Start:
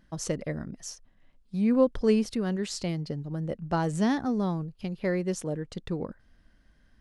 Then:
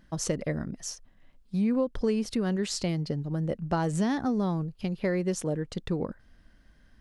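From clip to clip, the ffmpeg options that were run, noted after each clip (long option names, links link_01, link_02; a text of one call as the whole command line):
ffmpeg -i in.wav -af "acompressor=threshold=-26dB:ratio=6,volume=3dB" out.wav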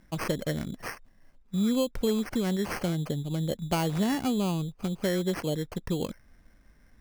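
ffmpeg -i in.wav -af "acrusher=samples=12:mix=1:aa=0.000001" out.wav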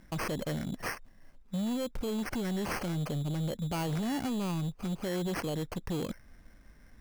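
ffmpeg -i in.wav -af "alimiter=level_in=2.5dB:limit=-24dB:level=0:latency=1:release=51,volume=-2.5dB,asoftclip=type=hard:threshold=-32dB,volume=2.5dB" out.wav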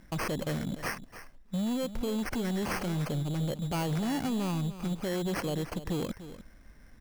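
ffmpeg -i in.wav -af "aecho=1:1:296:0.211,volume=1.5dB" out.wav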